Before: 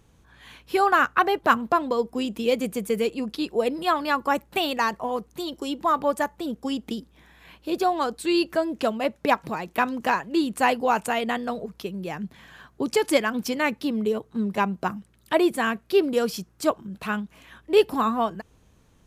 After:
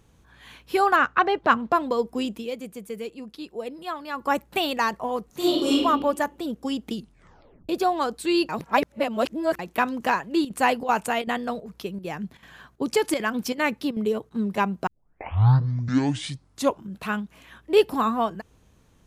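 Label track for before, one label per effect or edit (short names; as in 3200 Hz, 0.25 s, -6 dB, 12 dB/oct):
0.960000	1.720000	LPF 4900 Hz
2.280000	4.310000	dip -9.5 dB, fades 0.19 s
5.260000	5.760000	reverb throw, RT60 1.1 s, DRR -9 dB
6.930000	6.930000	tape stop 0.76 s
8.490000	9.590000	reverse
10.120000	14.310000	chopper 2.6 Hz, depth 65%, duty 85%
14.870000	14.870000	tape start 2.01 s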